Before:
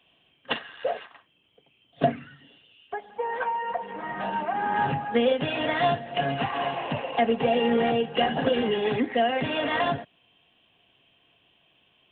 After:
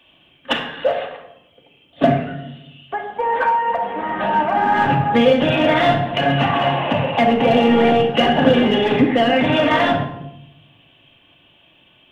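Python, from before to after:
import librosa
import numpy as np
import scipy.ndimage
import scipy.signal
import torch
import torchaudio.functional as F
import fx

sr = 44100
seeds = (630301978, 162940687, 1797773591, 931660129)

p1 = np.clip(x, -10.0 ** (-22.5 / 20.0), 10.0 ** (-22.5 / 20.0))
p2 = x + F.gain(torch.from_numpy(p1), -6.0).numpy()
p3 = fx.room_shoebox(p2, sr, seeds[0], volume_m3=2600.0, walls='furnished', distance_m=2.5)
y = F.gain(torch.from_numpy(p3), 5.0).numpy()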